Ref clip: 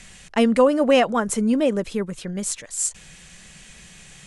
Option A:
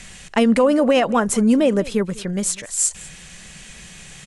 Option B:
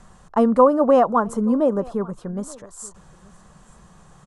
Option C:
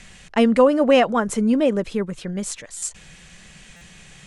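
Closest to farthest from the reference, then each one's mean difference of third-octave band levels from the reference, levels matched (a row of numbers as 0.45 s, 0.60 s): C, A, B; 1.0 dB, 2.5 dB, 6.5 dB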